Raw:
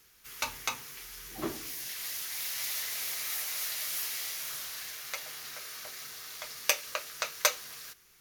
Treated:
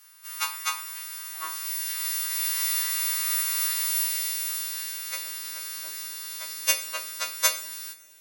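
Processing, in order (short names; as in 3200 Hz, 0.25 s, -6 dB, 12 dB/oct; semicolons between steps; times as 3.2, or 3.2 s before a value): frequency quantiser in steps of 2 st; two-slope reverb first 0.47 s, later 4.3 s, from -28 dB, DRR 8.5 dB; high-pass sweep 1100 Hz -> 270 Hz, 3.75–4.53; gain -3 dB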